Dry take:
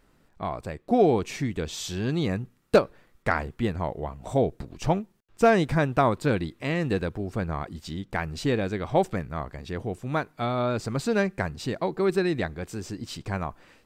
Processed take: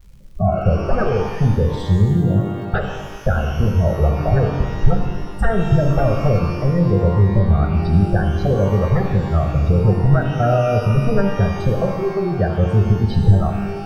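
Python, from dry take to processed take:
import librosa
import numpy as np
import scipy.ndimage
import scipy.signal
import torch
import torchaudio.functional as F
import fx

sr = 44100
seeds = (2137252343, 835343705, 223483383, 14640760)

y = fx.cvsd(x, sr, bps=64000)
y = fx.recorder_agc(y, sr, target_db=-14.5, rise_db_per_s=14.0, max_gain_db=30)
y = fx.transient(y, sr, attack_db=4, sustain_db=-12)
y = fx.fold_sine(y, sr, drive_db=16, ceiling_db=-2.5)
y = fx.spec_gate(y, sr, threshold_db=-10, keep='strong')
y = fx.band_shelf(y, sr, hz=4200.0, db=-14.5, octaves=1.7)
y = fx.fixed_phaser(y, sr, hz=1500.0, stages=8)
y = fx.dmg_crackle(y, sr, seeds[0], per_s=140.0, level_db=-34.0)
y = fx.low_shelf(y, sr, hz=290.0, db=11.0)
y = fx.rev_shimmer(y, sr, seeds[1], rt60_s=1.4, semitones=12, shimmer_db=-8, drr_db=3.0)
y = y * 10.0 ** (-11.0 / 20.0)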